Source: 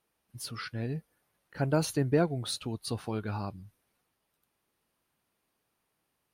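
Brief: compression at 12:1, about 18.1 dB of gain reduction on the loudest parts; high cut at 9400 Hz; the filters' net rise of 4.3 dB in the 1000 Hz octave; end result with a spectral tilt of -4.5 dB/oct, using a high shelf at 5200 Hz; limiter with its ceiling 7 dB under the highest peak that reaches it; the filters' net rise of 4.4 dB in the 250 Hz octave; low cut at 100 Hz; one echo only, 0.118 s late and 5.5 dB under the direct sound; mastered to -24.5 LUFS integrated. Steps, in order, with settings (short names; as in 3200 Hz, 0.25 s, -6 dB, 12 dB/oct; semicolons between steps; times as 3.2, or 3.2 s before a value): HPF 100 Hz; LPF 9400 Hz; bell 250 Hz +6 dB; bell 1000 Hz +6 dB; high shelf 5200 Hz -9 dB; compressor 12:1, threshold -36 dBFS; limiter -31.5 dBFS; echo 0.118 s -5.5 dB; gain +19 dB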